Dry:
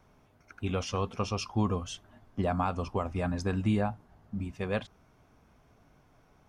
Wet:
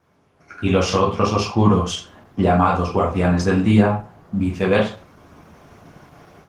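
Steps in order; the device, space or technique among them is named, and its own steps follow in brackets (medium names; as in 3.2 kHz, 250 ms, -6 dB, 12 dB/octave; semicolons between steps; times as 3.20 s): 0.99–1.70 s: treble shelf 3.8 kHz -5.5 dB; far-field microphone of a smart speaker (reverberation RT60 0.40 s, pre-delay 7 ms, DRR -2.5 dB; high-pass 84 Hz 24 dB/octave; level rider gain up to 16.5 dB; trim -1 dB; Opus 16 kbps 48 kHz)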